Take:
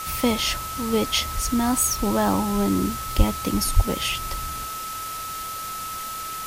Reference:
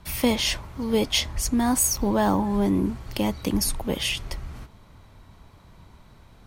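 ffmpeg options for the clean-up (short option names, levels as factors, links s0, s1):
-filter_complex "[0:a]bandreject=f=1300:w=30,asplit=3[s0][s1][s2];[s0]afade=t=out:st=3.17:d=0.02[s3];[s1]highpass=f=140:w=0.5412,highpass=f=140:w=1.3066,afade=t=in:st=3.17:d=0.02,afade=t=out:st=3.29:d=0.02[s4];[s2]afade=t=in:st=3.29:d=0.02[s5];[s3][s4][s5]amix=inputs=3:normalize=0,asplit=3[s6][s7][s8];[s6]afade=t=out:st=3.75:d=0.02[s9];[s7]highpass=f=140:w=0.5412,highpass=f=140:w=1.3066,afade=t=in:st=3.75:d=0.02,afade=t=out:st=3.87:d=0.02[s10];[s8]afade=t=in:st=3.87:d=0.02[s11];[s9][s10][s11]amix=inputs=3:normalize=0,afwtdn=0.018"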